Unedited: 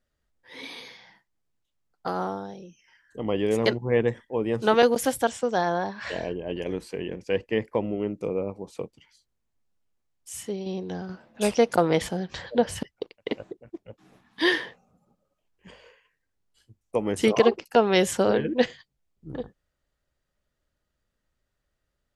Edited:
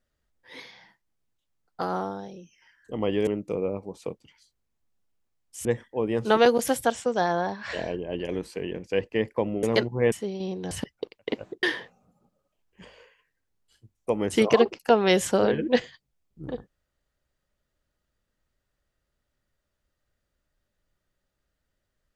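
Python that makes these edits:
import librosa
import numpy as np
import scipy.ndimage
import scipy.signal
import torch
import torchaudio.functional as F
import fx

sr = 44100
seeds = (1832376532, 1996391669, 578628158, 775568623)

y = fx.edit(x, sr, fx.cut(start_s=0.6, length_s=0.26),
    fx.swap(start_s=3.53, length_s=0.49, other_s=8.0, other_length_s=2.38),
    fx.cut(start_s=10.97, length_s=1.73),
    fx.cut(start_s=13.62, length_s=0.87), tone=tone)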